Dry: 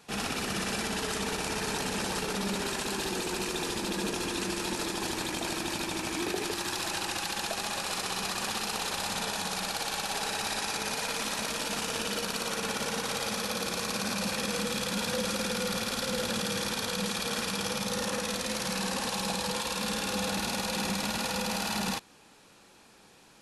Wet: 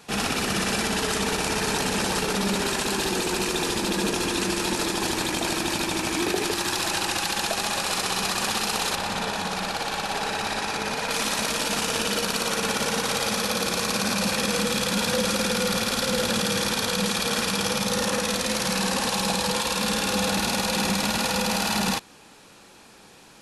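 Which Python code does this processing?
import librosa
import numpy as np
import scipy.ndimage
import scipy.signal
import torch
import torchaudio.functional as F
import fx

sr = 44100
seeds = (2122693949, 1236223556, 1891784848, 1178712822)

y = fx.high_shelf(x, sr, hz=4600.0, db=-10.5, at=(8.95, 11.11))
y = y * librosa.db_to_amplitude(7.0)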